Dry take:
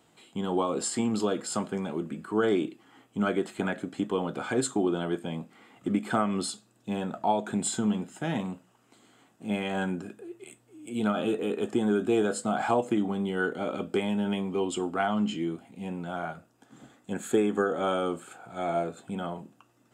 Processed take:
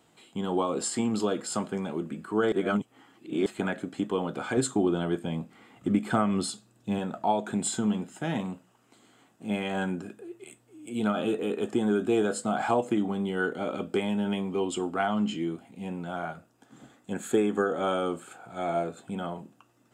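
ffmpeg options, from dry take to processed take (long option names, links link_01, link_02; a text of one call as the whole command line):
ffmpeg -i in.wav -filter_complex "[0:a]asettb=1/sr,asplit=3[link_01][link_02][link_03];[link_01]atrim=end=4.574[link_04];[link_02]atrim=start=4.57:end=6.99,asetpts=PTS-STARTPTS,afade=type=in:duration=0.004:curve=qsin,afade=type=out:start_time=2.416:duration=0.004:curve=qsin,lowshelf=frequency=120:gain=10.5[link_05];[link_03]atrim=start=6.986[link_06];[link_04][link_05]acrossfade=duration=0.004:curve1=hsin:curve2=qsin[link_07];[link_07][link_06]acrossfade=duration=0.004:curve1=qsin:curve2=hsin,asplit=3[link_08][link_09][link_10];[link_08]atrim=end=2.522[link_11];[link_09]atrim=start=2.518:end=3.462,asetpts=PTS-STARTPTS,areverse[link_12];[link_10]atrim=start=3.458[link_13];[link_11][link_12]acrossfade=duration=0.004:curve1=hsin:curve2=hsin[link_14];[link_14][link_13]acrossfade=duration=0.004:curve1=hsin:curve2=hsin" out.wav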